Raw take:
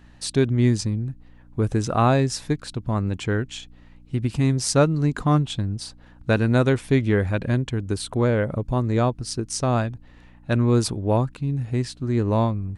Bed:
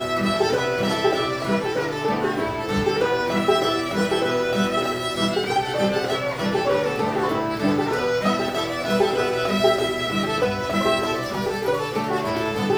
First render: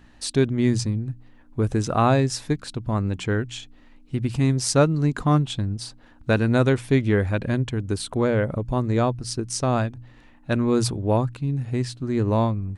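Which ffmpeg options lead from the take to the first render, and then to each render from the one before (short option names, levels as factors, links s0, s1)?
-af "bandreject=f=60:t=h:w=4,bandreject=f=120:t=h:w=4,bandreject=f=180:t=h:w=4"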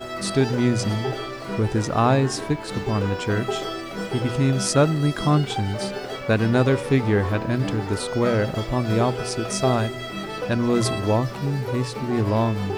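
-filter_complex "[1:a]volume=0.398[s0];[0:a][s0]amix=inputs=2:normalize=0"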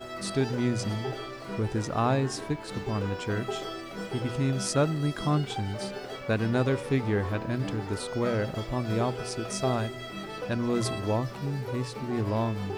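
-af "volume=0.447"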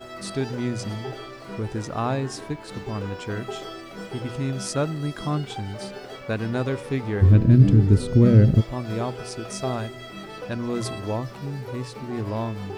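-filter_complex "[0:a]asplit=3[s0][s1][s2];[s0]afade=t=out:st=7.21:d=0.02[s3];[s1]asubboost=boost=11.5:cutoff=250,afade=t=in:st=7.21:d=0.02,afade=t=out:st=8.6:d=0.02[s4];[s2]afade=t=in:st=8.6:d=0.02[s5];[s3][s4][s5]amix=inputs=3:normalize=0"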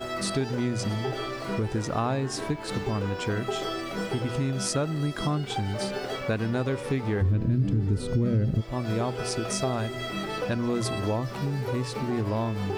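-filter_complex "[0:a]asplit=2[s0][s1];[s1]alimiter=limit=0.188:level=0:latency=1,volume=1.12[s2];[s0][s2]amix=inputs=2:normalize=0,acompressor=threshold=0.0501:ratio=3"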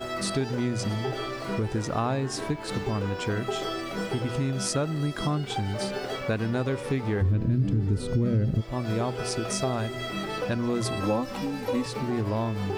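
-filter_complex "[0:a]asettb=1/sr,asplit=3[s0][s1][s2];[s0]atrim=end=11.004[s3];[s1]atrim=start=11:end=11.86,asetpts=PTS-STARTPTS,afade=t=in:d=0.004:c=qsin,afade=t=out:st=0.856:d=0.004:c=qsin,aecho=1:1:3.8:0.89,atrim=end_sample=37926[s4];[s2]atrim=start=11.856[s5];[s3][s4]acrossfade=d=0.004:c1=hsin:c2=qsin[s6];[s6][s5]acrossfade=d=0.004:c1=qsin:c2=hsin"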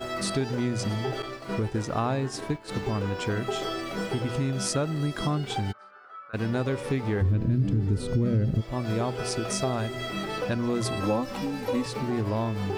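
-filter_complex "[0:a]asettb=1/sr,asplit=3[s0][s1][s2];[s0]atrim=end=1.224[s3];[s1]atrim=start=1.22:end=2.83,asetpts=PTS-STARTPTS,afade=t=in:d=0.004:c=qsin,afade=t=out:st=1.606:d=0.004:c=qsin,agate=range=0.0224:threshold=0.0316:ratio=3:release=100:detection=peak[s4];[s2]atrim=start=2.826[s5];[s3][s4]acrossfade=d=0.004:c1=hsin:c2=qsin[s6];[s6][s5]acrossfade=d=0.004:c1=qsin:c2=hsin,asplit=3[s7][s8][s9];[s7]afade=t=out:st=5.71:d=0.02[s10];[s8]bandpass=f=1300:t=q:w=12,afade=t=in:st=5.71:d=0.02,afade=t=out:st=6.33:d=0.02[s11];[s9]afade=t=in:st=6.33:d=0.02[s12];[s10][s11][s12]amix=inputs=3:normalize=0"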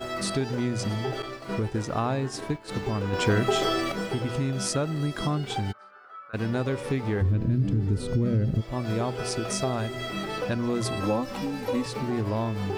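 -filter_complex "[0:a]asettb=1/sr,asplit=3[s0][s1][s2];[s0]atrim=end=3.134[s3];[s1]atrim=start=3.13:end=3.92,asetpts=PTS-STARTPTS,afade=t=in:d=0.004:c=qsin,afade=t=out:st=0.786:d=0.004:c=qsin,acontrast=53[s4];[s2]atrim=start=3.916[s5];[s3][s4]acrossfade=d=0.004:c1=hsin:c2=qsin[s6];[s6][s5]acrossfade=d=0.004:c1=qsin:c2=hsin"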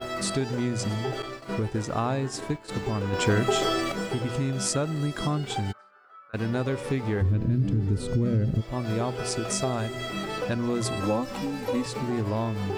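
-af "agate=range=0.501:threshold=0.01:ratio=16:detection=peak,adynamicequalizer=threshold=0.00158:dfrequency=7500:dqfactor=3.9:tfrequency=7500:tqfactor=3.9:attack=5:release=100:ratio=0.375:range=3:mode=boostabove:tftype=bell"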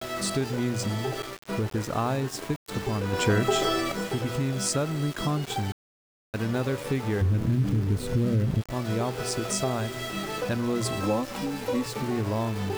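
-af "aeval=exprs='val(0)*gte(abs(val(0)),0.0168)':c=same"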